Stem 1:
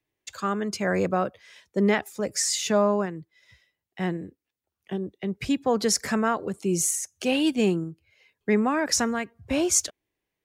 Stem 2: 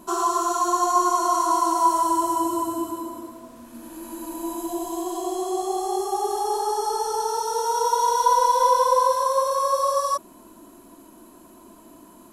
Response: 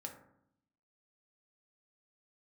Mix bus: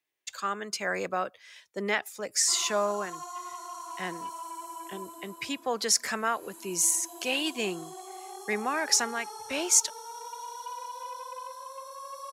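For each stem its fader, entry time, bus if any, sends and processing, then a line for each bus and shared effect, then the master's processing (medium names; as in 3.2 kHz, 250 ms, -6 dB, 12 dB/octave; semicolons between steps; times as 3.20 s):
+1.0 dB, 0.00 s, no send, none
-13.5 dB, 2.40 s, no send, gain riding within 5 dB 2 s; saturation -13.5 dBFS, distortion -21 dB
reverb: none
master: high-pass 1.2 kHz 6 dB/octave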